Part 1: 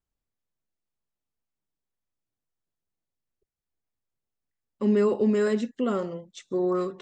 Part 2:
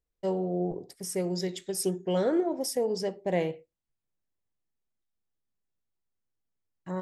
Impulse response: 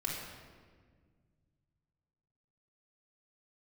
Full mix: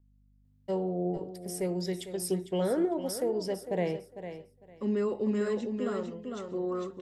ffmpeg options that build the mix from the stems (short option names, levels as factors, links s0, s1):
-filter_complex "[0:a]aeval=exprs='val(0)+0.00178*(sin(2*PI*50*n/s)+sin(2*PI*2*50*n/s)/2+sin(2*PI*3*50*n/s)/3+sin(2*PI*4*50*n/s)/4+sin(2*PI*5*50*n/s)/5)':c=same,volume=0.422,asplit=2[s0][s1];[s1]volume=0.562[s2];[1:a]equalizer=f=6400:w=2.5:g=-6,adelay=450,volume=0.841,asplit=2[s3][s4];[s4]volume=0.251[s5];[s2][s5]amix=inputs=2:normalize=0,aecho=0:1:452|904|1356:1|0.2|0.04[s6];[s0][s3][s6]amix=inputs=3:normalize=0,acrossover=split=460[s7][s8];[s8]acompressor=threshold=0.0251:ratio=2[s9];[s7][s9]amix=inputs=2:normalize=0"